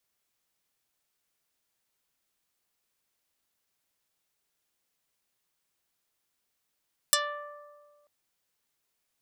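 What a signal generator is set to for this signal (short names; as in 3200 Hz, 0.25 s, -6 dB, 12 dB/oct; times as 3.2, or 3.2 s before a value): plucked string D5, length 0.94 s, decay 1.77 s, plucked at 0.27, dark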